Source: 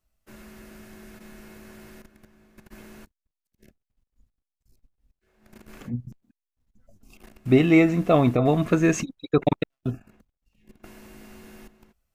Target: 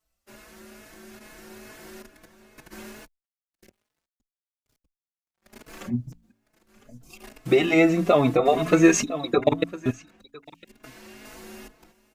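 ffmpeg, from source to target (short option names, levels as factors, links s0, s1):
-filter_complex "[0:a]bass=f=250:g=-8,treble=f=4000:g=9,bandreject=f=55.78:t=h:w=4,bandreject=f=111.56:t=h:w=4,bandreject=f=167.34:t=h:w=4,bandreject=f=223.12:t=h:w=4,bandreject=f=278.9:t=h:w=4,asplit=2[s0][s1];[s1]aecho=0:1:1006:0.119[s2];[s0][s2]amix=inputs=2:normalize=0,alimiter=limit=0.224:level=0:latency=1:release=496,dynaudnorm=f=510:g=7:m=2,asettb=1/sr,asplit=3[s3][s4][s5];[s3]atrim=end=2.914[s6];[s4]atrim=start=2.91:end=5.82,asetpts=PTS-STARTPTS,afade=t=in:d=0.004:c=qsin,afade=t=out:st=2.906:d=0.004:c=qsin,aeval=exprs='sgn(val(0))*max(abs(val(0))-0.00224,0)':c=same[s7];[s5]atrim=start=5.816[s8];[s6][s7]acrossfade=d=0.004:c1=hsin:c2=qsin[s9];[s9][s8]acrossfade=d=0.004:c1=qsin:c2=hsin,highshelf=f=6300:g=-10.5,asettb=1/sr,asplit=3[s10][s11][s12];[s10]atrim=end=9.904[s13];[s11]atrim=start=9.9:end=11.25,asetpts=PTS-STARTPTS,afade=t=in:d=0.004:c=qsin,afade=t=out:st=1.346:d=0.004:c=qsin,acrossover=split=1300|5500[s14][s15][s16];[s14]acompressor=threshold=0.00447:ratio=4[s17];[s15]acompressor=threshold=0.00398:ratio=4[s18];[s16]acompressor=threshold=0.00112:ratio=4[s19];[s17][s18][s19]amix=inputs=3:normalize=0[s20];[s12]atrim=start=11.246[s21];[s13][s20]acrossfade=d=0.004:c1=hsin:c2=qsin[s22];[s22][s21]acrossfade=d=0.004:c1=qsin:c2=hsin,asplit=2[s23][s24];[s24]adelay=4.2,afreqshift=2.3[s25];[s23][s25]amix=inputs=2:normalize=1,volume=1.58"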